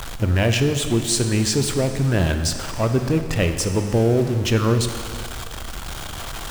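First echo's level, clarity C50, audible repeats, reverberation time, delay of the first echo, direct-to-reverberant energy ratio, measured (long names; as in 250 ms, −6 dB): no echo audible, 8.0 dB, no echo audible, 2.1 s, no echo audible, 7.0 dB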